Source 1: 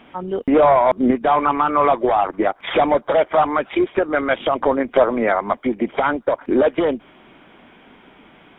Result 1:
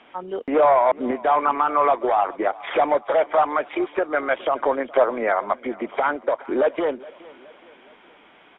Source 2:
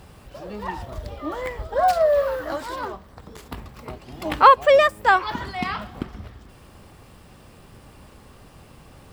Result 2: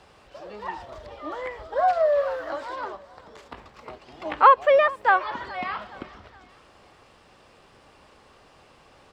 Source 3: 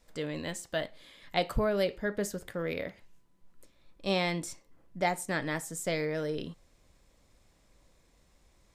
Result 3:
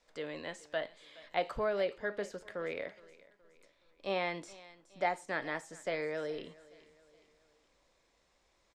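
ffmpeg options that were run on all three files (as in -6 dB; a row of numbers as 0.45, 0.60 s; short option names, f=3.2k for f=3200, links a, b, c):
-filter_complex "[0:a]acrossover=split=350 7500:gain=0.224 1 0.0891[a][b][c];[a][b][c]amix=inputs=3:normalize=0,asplit=2[d][e];[e]aecho=0:1:419|838|1257:0.0841|0.0387|0.0178[f];[d][f]amix=inputs=2:normalize=0,acrossover=split=2900[g][h];[h]acompressor=threshold=-49dB:ratio=4:attack=1:release=60[i];[g][i]amix=inputs=2:normalize=0,volume=-2dB"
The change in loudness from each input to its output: -3.5, -2.0, -4.5 LU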